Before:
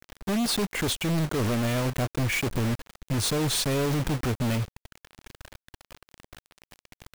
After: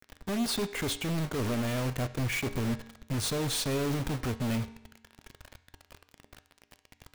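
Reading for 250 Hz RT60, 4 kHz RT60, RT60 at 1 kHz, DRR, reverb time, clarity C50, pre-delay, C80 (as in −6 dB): 0.90 s, 0.80 s, 0.80 s, 11.5 dB, 0.85 s, 15.0 dB, 4 ms, 17.5 dB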